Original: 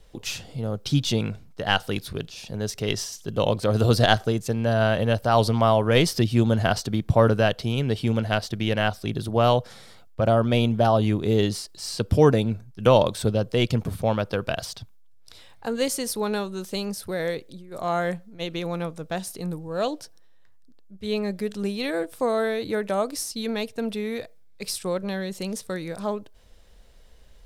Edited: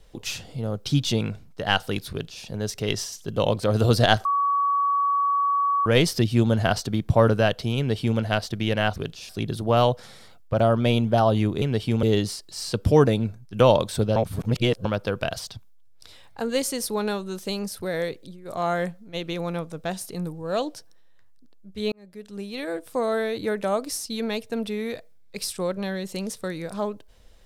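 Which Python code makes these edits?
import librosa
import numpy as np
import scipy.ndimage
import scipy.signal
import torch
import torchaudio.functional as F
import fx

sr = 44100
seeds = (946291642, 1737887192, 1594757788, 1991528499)

y = fx.edit(x, sr, fx.duplicate(start_s=2.11, length_s=0.33, to_s=8.96),
    fx.bleep(start_s=4.25, length_s=1.61, hz=1130.0, db=-19.0),
    fx.duplicate(start_s=7.78, length_s=0.41, to_s=11.29),
    fx.reverse_span(start_s=13.42, length_s=0.69),
    fx.fade_in_span(start_s=21.18, length_s=1.67, curve='qsin'), tone=tone)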